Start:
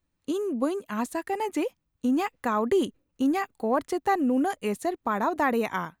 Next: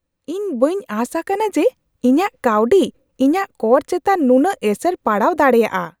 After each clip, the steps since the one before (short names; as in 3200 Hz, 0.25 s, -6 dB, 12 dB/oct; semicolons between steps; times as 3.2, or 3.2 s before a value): bell 520 Hz +9.5 dB 0.33 oct; AGC gain up to 9 dB; gain +1 dB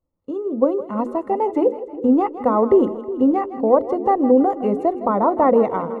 polynomial smoothing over 65 samples; notches 60/120/180/240/300/360/420/480/540 Hz; split-band echo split 450 Hz, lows 0.363 s, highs 0.161 s, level -13 dB; gain -1 dB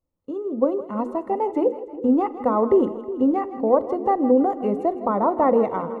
reverb RT60 0.80 s, pre-delay 36 ms, DRR 18.5 dB; gain -3 dB